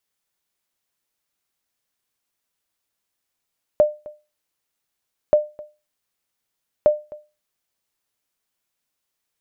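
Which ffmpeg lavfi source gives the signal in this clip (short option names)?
-f lavfi -i "aevalsrc='0.473*(sin(2*PI*601*mod(t,1.53))*exp(-6.91*mod(t,1.53)/0.28)+0.0794*sin(2*PI*601*max(mod(t,1.53)-0.26,0))*exp(-6.91*max(mod(t,1.53)-0.26,0)/0.28))':d=4.59:s=44100"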